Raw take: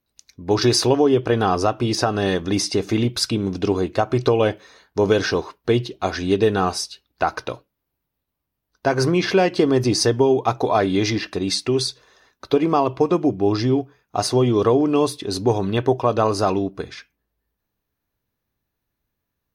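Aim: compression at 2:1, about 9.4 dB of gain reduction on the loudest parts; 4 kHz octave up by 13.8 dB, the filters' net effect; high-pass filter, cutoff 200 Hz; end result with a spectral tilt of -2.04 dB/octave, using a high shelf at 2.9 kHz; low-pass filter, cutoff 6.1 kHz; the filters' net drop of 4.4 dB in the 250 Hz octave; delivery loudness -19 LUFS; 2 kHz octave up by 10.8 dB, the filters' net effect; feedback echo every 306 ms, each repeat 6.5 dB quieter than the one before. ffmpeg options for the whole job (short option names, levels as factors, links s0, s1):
-af "highpass=200,lowpass=6100,equalizer=f=250:t=o:g=-5,equalizer=f=2000:t=o:g=8.5,highshelf=f=2900:g=9,equalizer=f=4000:t=o:g=9,acompressor=threshold=0.0794:ratio=2,aecho=1:1:306|612|918|1224|1530|1836:0.473|0.222|0.105|0.0491|0.0231|0.0109,volume=1.26"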